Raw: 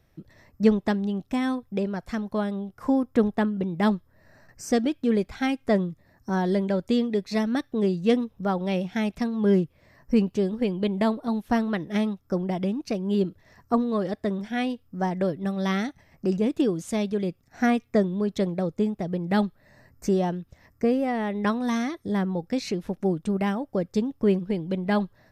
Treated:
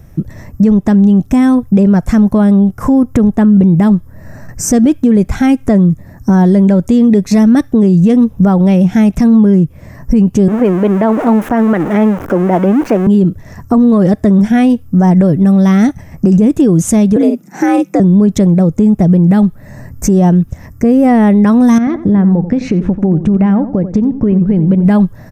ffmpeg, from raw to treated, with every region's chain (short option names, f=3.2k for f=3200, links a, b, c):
-filter_complex "[0:a]asettb=1/sr,asplit=3[a][b][c];[a]atrim=end=10.484[d];[b]atrim=start=10.48:end=13.07,asetpts=PTS-STARTPTS,afade=t=in:d=0.004:c=qsin,afade=t=out:st=2.586:d=0.004:c=qsin,aeval=exprs='val(0)+0.5*0.0316*sgn(val(0))':c=same,acrossover=split=290 2500:gain=0.0891 1 0.0891[e][f][g];[e][f][g]amix=inputs=3:normalize=0[h];[c]atrim=start=13.066[i];[d][h]acrossfade=d=0.004:c1=hsin:c2=qsin[j];[j][i]acrossfade=d=0.004:c1=qsin:c2=hsin,asettb=1/sr,asplit=3[k][l][m];[k]atrim=end=17.164[n];[l]atrim=start=17.16:end=18,asetpts=PTS-STARTPTS,afade=t=in:d=0.004:c=qsin,afade=t=out:st=0.836:d=0.004:c=qsin,highpass=95,afreqshift=74,asplit=2[o][p];[p]adelay=46,volume=-7.5dB[q];[o][q]amix=inputs=2:normalize=0,atrim=end_sample=37044[r];[m]atrim=start=17.996[s];[n][r]acrossfade=d=0.004:c1=hsin:c2=qsin[t];[t][s]acrossfade=d=0.004:c1=qsin:c2=hsin,asettb=1/sr,asplit=3[u][v][w];[u]atrim=end=21.784[x];[v]atrim=start=21.78:end=24.85,asetpts=PTS-STARTPTS,afade=t=in:d=0.004:c=qsin,afade=t=out:st=3.066:d=0.004:c=qsin,acompressor=threshold=-32dB:ratio=6:attack=3.2:release=140:knee=1:detection=peak,lowpass=2.7k,asplit=2[y][z];[z]adelay=89,lowpass=f=1.7k:p=1,volume=-11.5dB,asplit=2[aa][ab];[ab]adelay=89,lowpass=f=1.7k:p=1,volume=0.32,asplit=2[ac][ad];[ad]adelay=89,lowpass=f=1.7k:p=1,volume=0.32[ae];[y][aa][ac][ae]amix=inputs=4:normalize=0,atrim=end_sample=135387[af];[w]atrim=start=24.846[ag];[x][af]acrossfade=d=0.004:c1=hsin:c2=qsin[ah];[ah][ag]acrossfade=d=0.004:c1=qsin:c2=hsin,firequalizer=gain_entry='entry(160,0);entry(380,-8);entry(4300,-19);entry(6200,-6)':delay=0.05:min_phase=1,acompressor=threshold=-28dB:ratio=6,alimiter=level_in=29dB:limit=-1dB:release=50:level=0:latency=1,volume=-1dB"